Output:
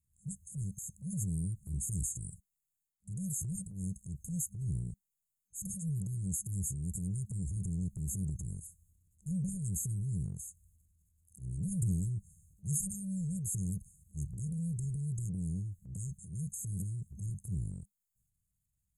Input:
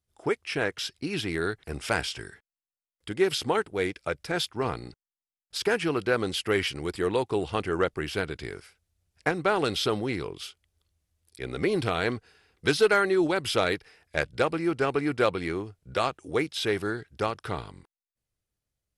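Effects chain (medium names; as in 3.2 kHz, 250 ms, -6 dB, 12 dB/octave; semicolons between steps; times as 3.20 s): FFT band-reject 200–6400 Hz; transient shaper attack -7 dB, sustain +7 dB; trim +3.5 dB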